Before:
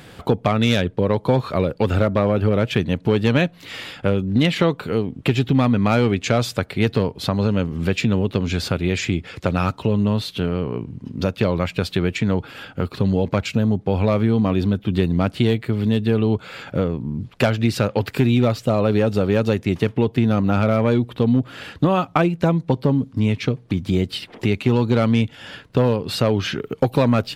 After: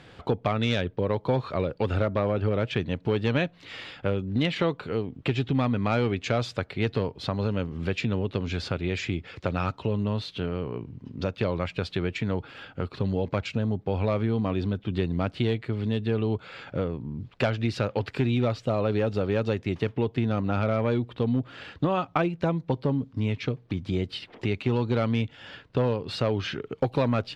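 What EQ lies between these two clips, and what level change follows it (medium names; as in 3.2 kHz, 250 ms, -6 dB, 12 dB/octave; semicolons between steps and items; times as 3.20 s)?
low-pass 5.1 kHz 12 dB/octave; peaking EQ 200 Hz -3.5 dB 0.77 oct; -6.5 dB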